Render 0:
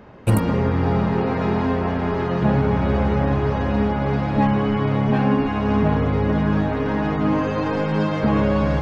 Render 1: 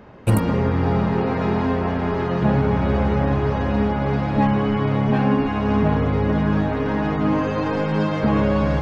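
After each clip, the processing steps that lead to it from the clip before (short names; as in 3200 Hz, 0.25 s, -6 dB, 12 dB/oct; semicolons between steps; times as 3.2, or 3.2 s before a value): nothing audible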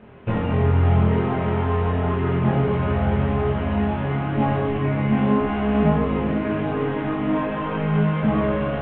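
CVSD 16 kbps; chorus voices 2, 0.44 Hz, delay 23 ms, depth 1.3 ms; reverb RT60 1.4 s, pre-delay 4 ms, DRR 3 dB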